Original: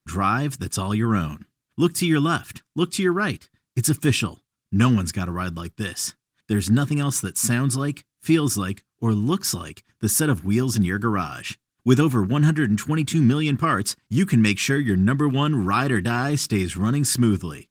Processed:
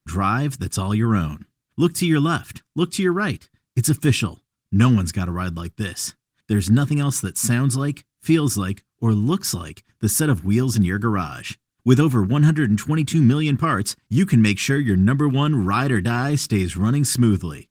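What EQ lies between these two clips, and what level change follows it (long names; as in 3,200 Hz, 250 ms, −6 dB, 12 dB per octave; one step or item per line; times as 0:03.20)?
low-shelf EQ 160 Hz +5.5 dB
0.0 dB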